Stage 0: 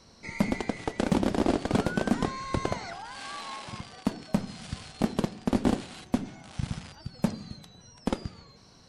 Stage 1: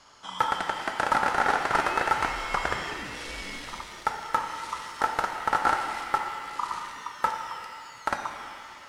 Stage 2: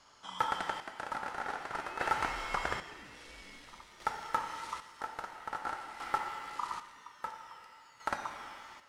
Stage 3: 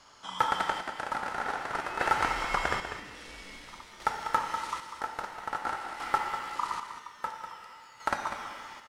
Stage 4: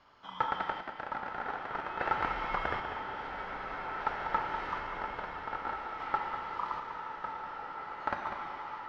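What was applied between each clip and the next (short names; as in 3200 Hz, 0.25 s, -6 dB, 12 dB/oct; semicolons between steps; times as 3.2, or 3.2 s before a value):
ring modulator 1100 Hz; shimmer reverb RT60 2.4 s, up +7 st, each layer -8 dB, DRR 4.5 dB; gain +3 dB
chopper 0.5 Hz, depth 60%, duty 40%; gain -6.5 dB
echo 0.196 s -9.5 dB; gain +5 dB
air absorption 290 m; bloom reverb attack 2.41 s, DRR 3 dB; gain -3 dB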